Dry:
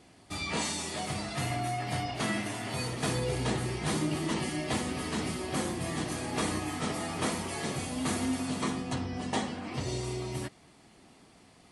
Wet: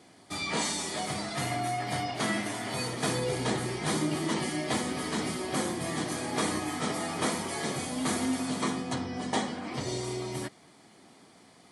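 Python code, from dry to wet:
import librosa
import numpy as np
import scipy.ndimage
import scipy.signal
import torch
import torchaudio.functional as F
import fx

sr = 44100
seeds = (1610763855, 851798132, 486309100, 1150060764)

y = scipy.signal.sosfilt(scipy.signal.bessel(2, 160.0, 'highpass', norm='mag', fs=sr, output='sos'), x)
y = fx.notch(y, sr, hz=2700.0, q=9.7)
y = F.gain(torch.from_numpy(y), 2.5).numpy()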